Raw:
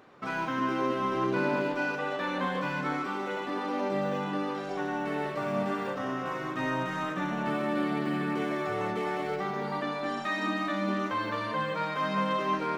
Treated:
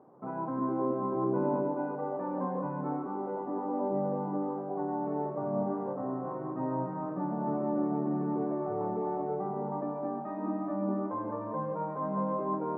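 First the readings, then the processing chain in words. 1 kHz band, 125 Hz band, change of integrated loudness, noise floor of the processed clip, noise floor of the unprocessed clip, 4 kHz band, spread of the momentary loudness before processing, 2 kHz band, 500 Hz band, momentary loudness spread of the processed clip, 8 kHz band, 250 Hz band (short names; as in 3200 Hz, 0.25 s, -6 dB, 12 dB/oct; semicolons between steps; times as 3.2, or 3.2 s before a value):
-3.5 dB, -0.5 dB, -2.5 dB, -38 dBFS, -35 dBFS, under -40 dB, 4 LU, -21.0 dB, -0.5 dB, 5 LU, under -25 dB, -0.5 dB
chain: Chebyshev band-pass 120–920 Hz, order 3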